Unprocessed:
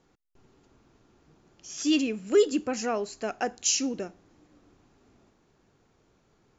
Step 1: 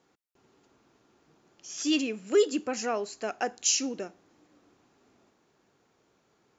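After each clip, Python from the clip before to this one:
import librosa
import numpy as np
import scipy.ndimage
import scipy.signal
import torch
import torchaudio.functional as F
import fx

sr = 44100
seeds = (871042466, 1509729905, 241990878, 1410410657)

y = fx.highpass(x, sr, hz=290.0, slope=6)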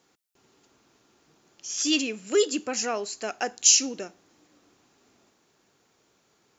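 y = fx.high_shelf(x, sr, hz=2700.0, db=9.5)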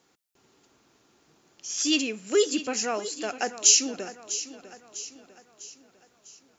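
y = fx.echo_feedback(x, sr, ms=650, feedback_pct=47, wet_db=-13.5)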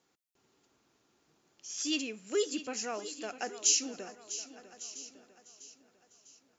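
y = x + 10.0 ** (-18.5 / 20.0) * np.pad(x, (int(1152 * sr / 1000.0), 0))[:len(x)]
y = y * librosa.db_to_amplitude(-8.5)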